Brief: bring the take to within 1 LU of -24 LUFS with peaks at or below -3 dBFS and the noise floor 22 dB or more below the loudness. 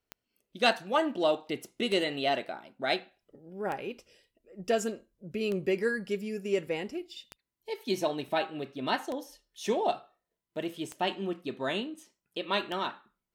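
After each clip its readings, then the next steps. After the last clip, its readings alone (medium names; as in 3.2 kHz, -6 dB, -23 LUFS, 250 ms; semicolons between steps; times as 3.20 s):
clicks found 8; loudness -32.0 LUFS; peak level -11.5 dBFS; loudness target -24.0 LUFS
-> de-click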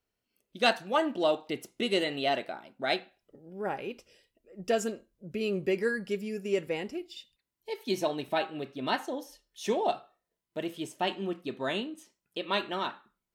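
clicks found 0; loudness -32.0 LUFS; peak level -11.5 dBFS; loudness target -24.0 LUFS
-> trim +8 dB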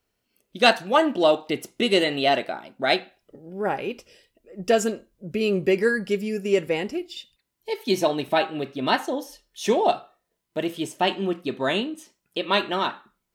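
loudness -24.0 LUFS; peak level -3.5 dBFS; noise floor -78 dBFS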